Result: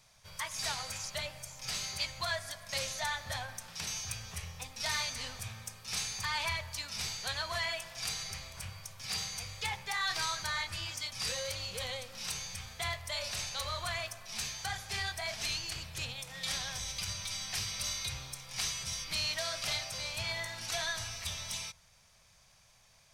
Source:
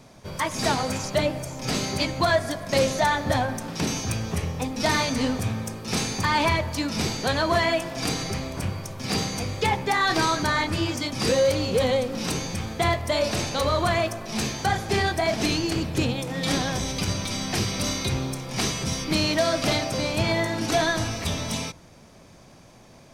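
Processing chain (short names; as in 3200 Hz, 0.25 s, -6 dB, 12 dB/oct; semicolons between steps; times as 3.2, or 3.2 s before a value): passive tone stack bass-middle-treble 10-0-10; gain -5 dB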